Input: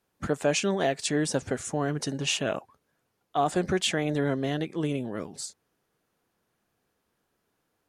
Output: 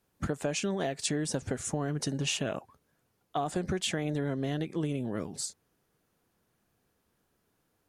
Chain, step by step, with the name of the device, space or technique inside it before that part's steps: ASMR close-microphone chain (low shelf 230 Hz +7 dB; compressor 6:1, threshold -27 dBFS, peak gain reduction 9.5 dB; high shelf 6900 Hz +4.5 dB); gain -1 dB

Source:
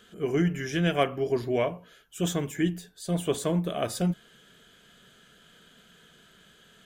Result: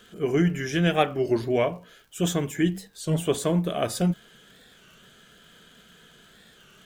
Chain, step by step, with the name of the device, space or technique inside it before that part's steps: warped LP (record warp 33 1/3 rpm, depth 160 cents; crackle 85/s -50 dBFS; pink noise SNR 44 dB); gain +3 dB

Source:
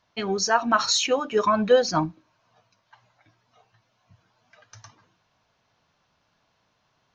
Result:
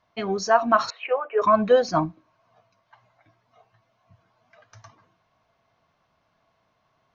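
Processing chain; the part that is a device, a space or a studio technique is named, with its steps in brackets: inside a helmet (high shelf 3500 Hz -9.5 dB; small resonant body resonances 670/1100/2100 Hz, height 8 dB); 0.9–1.42 Chebyshev band-pass 410–2600 Hz, order 4

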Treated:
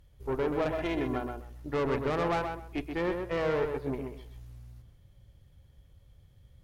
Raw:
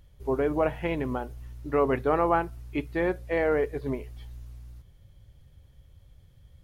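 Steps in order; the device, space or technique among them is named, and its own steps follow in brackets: rockabilly slapback (tube stage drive 25 dB, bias 0.65; tape echo 0.128 s, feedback 23%, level -3.5 dB, low-pass 2400 Hz); 0.72–1.41 comb 2.9 ms, depth 59%

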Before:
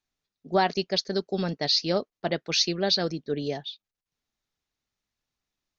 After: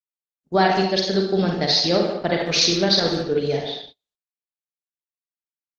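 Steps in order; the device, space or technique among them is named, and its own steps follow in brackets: speakerphone in a meeting room (reverb RT60 0.55 s, pre-delay 38 ms, DRR 0.5 dB; speakerphone echo 0.15 s, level -9 dB; AGC gain up to 5.5 dB; gate -38 dBFS, range -33 dB; Opus 16 kbps 48000 Hz)

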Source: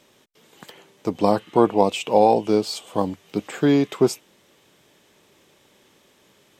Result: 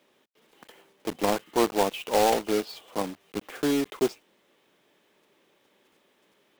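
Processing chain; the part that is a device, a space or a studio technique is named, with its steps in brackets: early digital voice recorder (BPF 210–3500 Hz; block floating point 3-bit); gain -6.5 dB

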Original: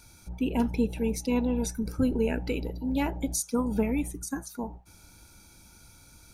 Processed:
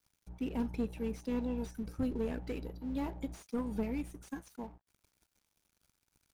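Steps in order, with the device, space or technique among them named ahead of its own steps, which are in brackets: early transistor amplifier (crossover distortion -49 dBFS; slew limiter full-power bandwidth 31 Hz); gain -8 dB

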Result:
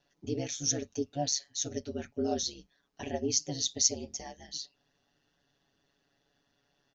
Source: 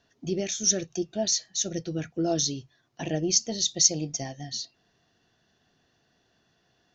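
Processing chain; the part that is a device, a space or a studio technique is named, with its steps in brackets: ring-modulated robot voice (ring modulator 70 Hz; comb 7.1 ms, depth 66%); gain -4.5 dB

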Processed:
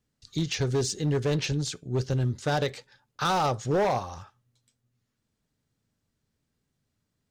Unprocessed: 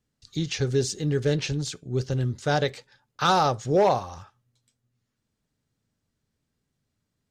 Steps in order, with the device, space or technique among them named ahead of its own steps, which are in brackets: limiter into clipper (limiter -15 dBFS, peak gain reduction 4.5 dB; hard clip -20.5 dBFS, distortion -15 dB)

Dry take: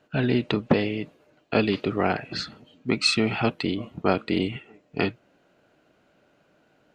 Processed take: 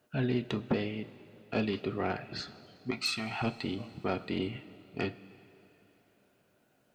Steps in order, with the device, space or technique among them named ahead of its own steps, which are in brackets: open-reel tape (soft clip -11.5 dBFS, distortion -18 dB; bell 110 Hz +4 dB 1.16 oct; white noise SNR 45 dB); 2.91–3.42 resonant low shelf 600 Hz -7 dB, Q 3; two-slope reverb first 0.21 s, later 3.3 s, from -18 dB, DRR 8.5 dB; gain -9 dB

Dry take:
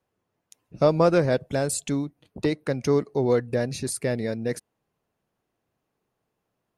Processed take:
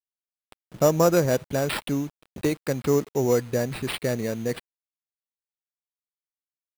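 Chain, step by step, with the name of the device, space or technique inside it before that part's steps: early 8-bit sampler (sample-rate reducer 6400 Hz, jitter 0%; bit-crush 8-bit)

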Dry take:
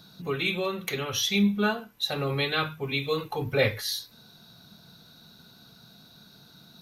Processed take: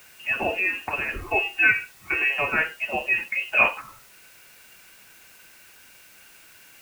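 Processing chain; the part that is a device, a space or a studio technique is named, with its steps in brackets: 1.19–2.32 comb 2.7 ms, depth 91%; scrambled radio voice (BPF 350–2800 Hz; inverted band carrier 3000 Hz; white noise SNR 25 dB); gain +6 dB

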